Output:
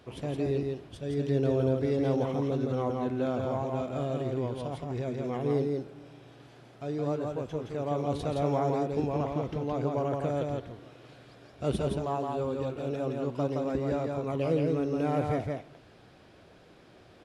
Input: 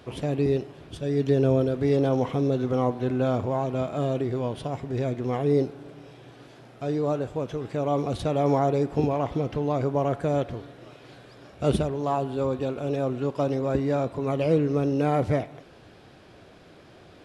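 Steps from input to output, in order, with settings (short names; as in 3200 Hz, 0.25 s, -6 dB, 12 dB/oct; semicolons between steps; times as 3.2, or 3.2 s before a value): echo 0.168 s -3 dB; gain -6.5 dB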